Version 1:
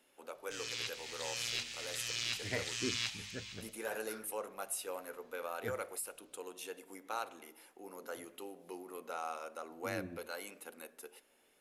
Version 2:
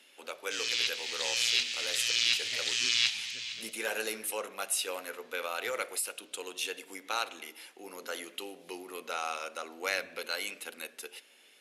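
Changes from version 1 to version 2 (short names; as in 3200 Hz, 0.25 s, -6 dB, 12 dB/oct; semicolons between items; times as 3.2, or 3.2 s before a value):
first voice +4.0 dB; second voice -12.0 dB; master: add weighting filter D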